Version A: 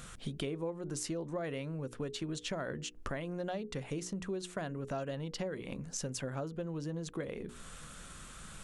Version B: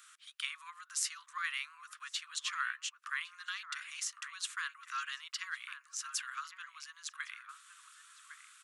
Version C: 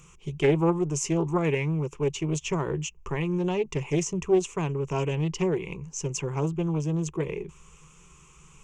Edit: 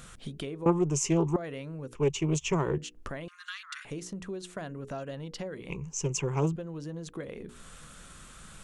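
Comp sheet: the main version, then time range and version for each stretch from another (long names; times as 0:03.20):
A
0:00.66–0:01.36: punch in from C
0:01.95–0:02.78: punch in from C
0:03.28–0:03.85: punch in from B
0:05.70–0:06.56: punch in from C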